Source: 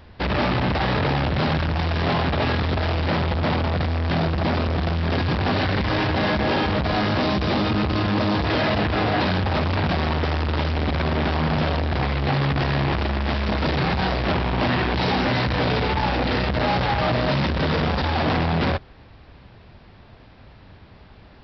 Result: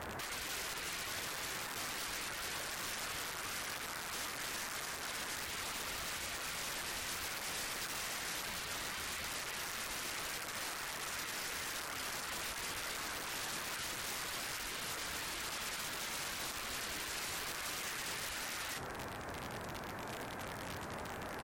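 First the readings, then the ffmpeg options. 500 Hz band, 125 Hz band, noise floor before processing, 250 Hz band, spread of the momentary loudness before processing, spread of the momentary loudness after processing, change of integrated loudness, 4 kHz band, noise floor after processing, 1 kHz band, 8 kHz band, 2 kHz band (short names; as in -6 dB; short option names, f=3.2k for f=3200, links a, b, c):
-24.0 dB, -32.0 dB, -47 dBFS, -28.5 dB, 2 LU, 5 LU, -17.5 dB, -12.0 dB, -45 dBFS, -19.5 dB, n/a, -14.0 dB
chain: -filter_complex "[0:a]highpass=f=370:p=1,acrossover=split=5100[a][b];[b]acompressor=threshold=-51dB:ratio=4:attack=1:release=60[c];[a][c]amix=inputs=2:normalize=0,aemphasis=mode=reproduction:type=cd,afftfilt=real='re*lt(hypot(re,im),0.0398)':imag='im*lt(hypot(re,im),0.0398)':win_size=1024:overlap=0.75,highshelf=f=2.4k:t=q:w=1.5:g=-12,alimiter=level_in=14dB:limit=-24dB:level=0:latency=1:release=40,volume=-14dB,acrusher=bits=10:mix=0:aa=0.000001,aeval=exprs='(mod(158*val(0)+1,2)-1)/158':c=same,aecho=1:1:23|76:0.224|0.15,volume=8.5dB" -ar 44100 -c:a libmp3lame -b:a 64k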